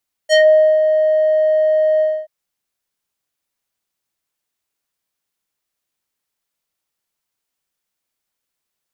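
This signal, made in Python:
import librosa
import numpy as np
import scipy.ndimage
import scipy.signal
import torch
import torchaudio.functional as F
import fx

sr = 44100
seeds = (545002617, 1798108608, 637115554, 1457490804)

y = fx.sub_voice(sr, note=75, wave='square', cutoff_hz=850.0, q=1.6, env_oct=3.5, env_s=0.17, attack_ms=42.0, decay_s=0.46, sustain_db=-6.5, release_s=0.26, note_s=1.72, slope=12)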